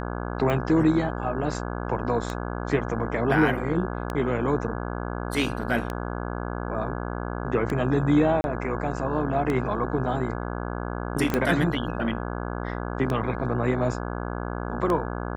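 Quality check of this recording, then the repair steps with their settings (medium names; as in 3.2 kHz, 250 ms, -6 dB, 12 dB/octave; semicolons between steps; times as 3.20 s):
buzz 60 Hz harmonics 28 -31 dBFS
tick 33 1/3 rpm -15 dBFS
8.41–8.44 s: dropout 31 ms
11.34 s: pop -10 dBFS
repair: de-click; de-hum 60 Hz, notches 28; interpolate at 8.41 s, 31 ms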